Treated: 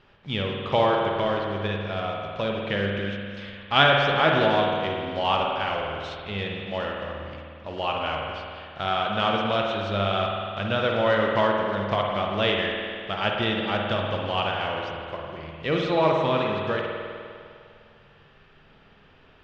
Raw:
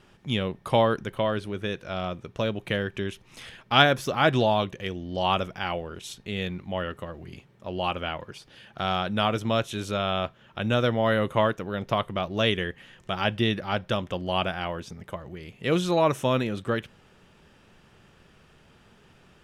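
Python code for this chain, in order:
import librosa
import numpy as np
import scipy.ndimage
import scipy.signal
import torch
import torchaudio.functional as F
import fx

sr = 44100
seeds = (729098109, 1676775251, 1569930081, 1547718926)

y = fx.block_float(x, sr, bits=5)
y = scipy.signal.sosfilt(scipy.signal.butter(4, 4400.0, 'lowpass', fs=sr, output='sos'), y)
y = fx.peak_eq(y, sr, hz=220.0, db=-3.0, octaves=1.7)
y = fx.hum_notches(y, sr, base_hz=60, count=6)
y = fx.rev_spring(y, sr, rt60_s=2.3, pass_ms=(50,), chirp_ms=35, drr_db=-0.5)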